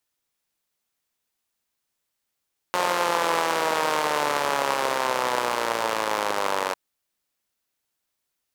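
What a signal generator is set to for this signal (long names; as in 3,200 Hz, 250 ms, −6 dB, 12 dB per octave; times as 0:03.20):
pulse-train model of a four-cylinder engine, changing speed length 4.00 s, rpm 5,400, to 2,800, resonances 560/900 Hz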